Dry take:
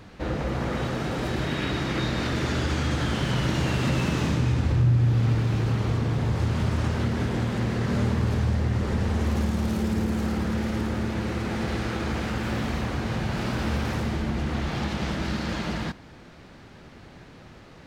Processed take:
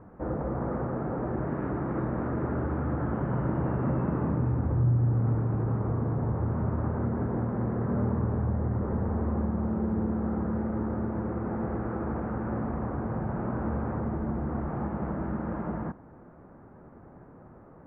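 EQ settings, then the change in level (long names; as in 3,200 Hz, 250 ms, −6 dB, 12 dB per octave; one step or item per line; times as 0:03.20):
low-pass filter 1,300 Hz 24 dB per octave
high-frequency loss of the air 400 metres
low-shelf EQ 130 Hz −7 dB
0.0 dB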